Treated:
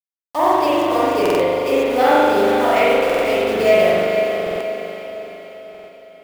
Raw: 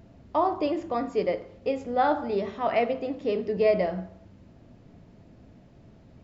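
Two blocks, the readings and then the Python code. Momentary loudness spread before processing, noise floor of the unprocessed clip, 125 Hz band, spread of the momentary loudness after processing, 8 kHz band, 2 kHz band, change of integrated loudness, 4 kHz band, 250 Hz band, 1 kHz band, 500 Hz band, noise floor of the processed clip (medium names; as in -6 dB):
8 LU, -54 dBFS, +5.5 dB, 16 LU, no reading, +16.0 dB, +11.0 dB, +17.0 dB, +9.5 dB, +11.0 dB, +11.5 dB, under -85 dBFS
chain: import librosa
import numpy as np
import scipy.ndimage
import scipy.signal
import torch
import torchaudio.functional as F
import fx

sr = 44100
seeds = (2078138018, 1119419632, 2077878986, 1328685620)

y = fx.tracing_dist(x, sr, depth_ms=0.039)
y = fx.highpass(y, sr, hz=170.0, slope=6)
y = fx.high_shelf(y, sr, hz=2100.0, db=12.0)
y = fx.quant_dither(y, sr, seeds[0], bits=6, dither='none')
y = fx.echo_diffused(y, sr, ms=461, feedback_pct=51, wet_db=-7.0)
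y = fx.rev_spring(y, sr, rt60_s=1.8, pass_ms=(40,), chirp_ms=75, drr_db=-8.5)
y = fx.buffer_glitch(y, sr, at_s=(1.21, 3.05, 4.42, 5.7), block=2048, repeats=3)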